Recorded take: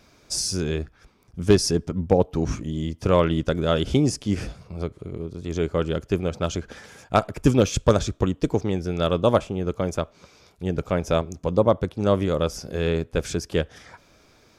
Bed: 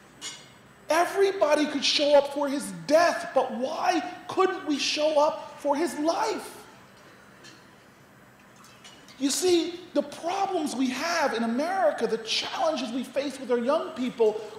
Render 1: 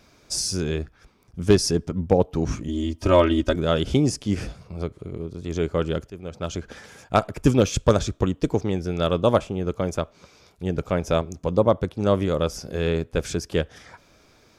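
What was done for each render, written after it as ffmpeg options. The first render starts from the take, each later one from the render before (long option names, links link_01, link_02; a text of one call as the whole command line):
ffmpeg -i in.wav -filter_complex "[0:a]asettb=1/sr,asplit=3[link_01][link_02][link_03];[link_01]atrim=end=2.684[link_04];[link_02]atrim=start=2.68:end=3.56,asetpts=PTS-STARTPTS,afade=type=in:duration=0.004:curve=qsin,afade=type=out:start_time=0.876:duration=0.004:curve=qsin,aecho=1:1:3.2:0.95,atrim=end_sample=38808[link_05];[link_03]atrim=start=3.556[link_06];[link_04][link_05]acrossfade=duration=0.004:curve1=hsin:curve2=qsin[link_07];[link_07][link_06]acrossfade=duration=0.004:curve1=qsin:curve2=hsin,asplit=2[link_08][link_09];[link_08]atrim=end=6.1,asetpts=PTS-STARTPTS,afade=type=out:start_time=6.096:duration=0.004:curve=hsin:silence=0.112202[link_10];[link_09]atrim=start=6.1,asetpts=PTS-STARTPTS,afade=type=in:duration=0.61:silence=0.112202[link_11];[link_10][link_11]concat=n=2:v=0:a=1" out.wav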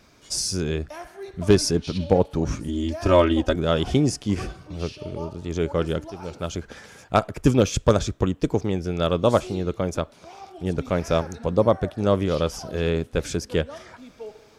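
ffmpeg -i in.wav -i bed.wav -filter_complex "[1:a]volume=-15.5dB[link_01];[0:a][link_01]amix=inputs=2:normalize=0" out.wav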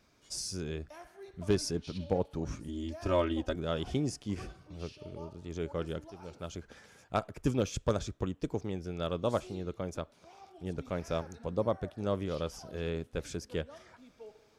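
ffmpeg -i in.wav -af "volume=-12dB" out.wav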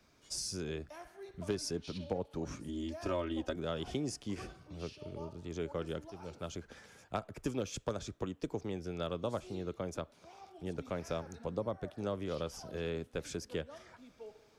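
ffmpeg -i in.wav -filter_complex "[0:a]acrossover=split=110|250[link_01][link_02][link_03];[link_01]acompressor=threshold=-51dB:ratio=4[link_04];[link_02]acompressor=threshold=-45dB:ratio=4[link_05];[link_03]acompressor=threshold=-34dB:ratio=4[link_06];[link_04][link_05][link_06]amix=inputs=3:normalize=0" out.wav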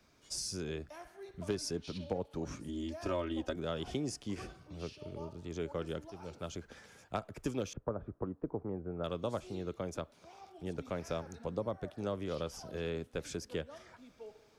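ffmpeg -i in.wav -filter_complex "[0:a]asettb=1/sr,asplit=3[link_01][link_02][link_03];[link_01]atrim=end=7.734[link_04];[link_02]atrim=start=7.73:end=9.04,asetpts=PTS-STARTPTS,afade=type=in:duration=0.004:curve=qsin,afade=type=out:start_time=1.306:duration=0.004:curve=qsin,lowpass=frequency=1300:width=0.5412,lowpass=frequency=1300:width=1.3066[link_05];[link_03]atrim=start=9.036[link_06];[link_04][link_05]acrossfade=duration=0.004:curve1=hsin:curve2=qsin[link_07];[link_07][link_06]acrossfade=duration=0.004:curve1=qsin:curve2=hsin" out.wav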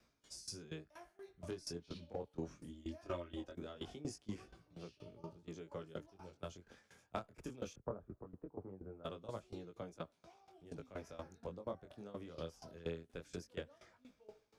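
ffmpeg -i in.wav -af "flanger=delay=17.5:depth=7:speed=0.2,aeval=exprs='val(0)*pow(10,-18*if(lt(mod(4.2*n/s,1),2*abs(4.2)/1000),1-mod(4.2*n/s,1)/(2*abs(4.2)/1000),(mod(4.2*n/s,1)-2*abs(4.2)/1000)/(1-2*abs(4.2)/1000))/20)':channel_layout=same" out.wav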